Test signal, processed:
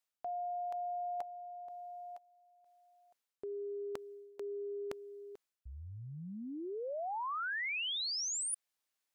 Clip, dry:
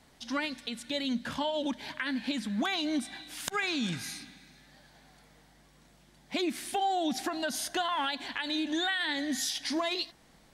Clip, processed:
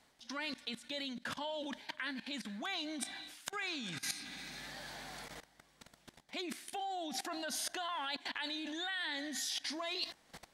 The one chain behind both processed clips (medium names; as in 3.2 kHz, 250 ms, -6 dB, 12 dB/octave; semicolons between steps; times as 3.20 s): level held to a coarse grid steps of 20 dB; treble shelf 12 kHz -3.5 dB; reverse; compression 4:1, threshold -53 dBFS; reverse; bass shelf 290 Hz -10.5 dB; trim +14.5 dB